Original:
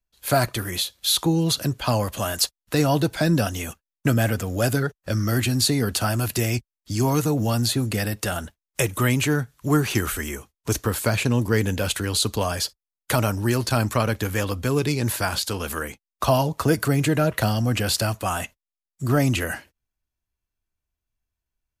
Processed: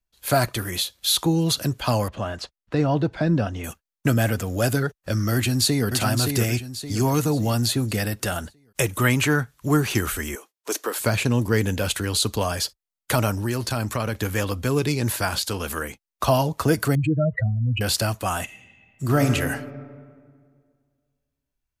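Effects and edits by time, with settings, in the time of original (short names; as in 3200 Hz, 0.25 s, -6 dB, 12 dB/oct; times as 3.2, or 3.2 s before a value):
2.08–3.64 tape spacing loss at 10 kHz 27 dB
5.34–5.87 echo throw 0.57 s, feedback 40%, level -5 dB
9.04–9.68 dynamic EQ 1300 Hz, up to +6 dB, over -38 dBFS, Q 0.93
10.35–11 HPF 330 Hz 24 dB/oct
13.4–14.15 compressor 2:1, threshold -23 dBFS
16.95–17.81 spectral contrast raised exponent 3.4
18.43–19.3 reverb throw, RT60 2 s, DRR 5 dB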